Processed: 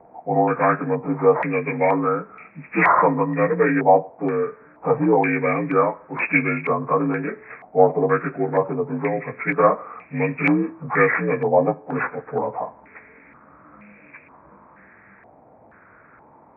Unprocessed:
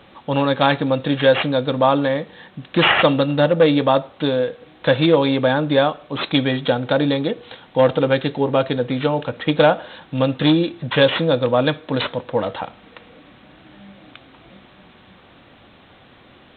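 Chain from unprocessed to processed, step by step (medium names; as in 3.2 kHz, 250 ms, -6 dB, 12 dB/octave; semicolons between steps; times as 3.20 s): frequency axis rescaled in octaves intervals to 84%; step-sequenced low-pass 2.1 Hz 760–2500 Hz; trim -3.5 dB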